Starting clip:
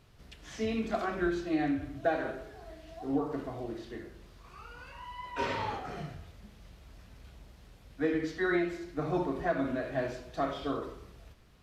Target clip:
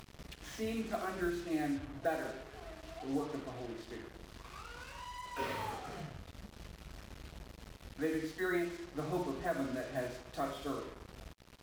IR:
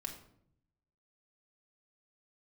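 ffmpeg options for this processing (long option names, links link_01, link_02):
-af "acompressor=mode=upward:threshold=-36dB:ratio=2.5,acrusher=bits=6:mix=0:aa=0.5,volume=-5.5dB"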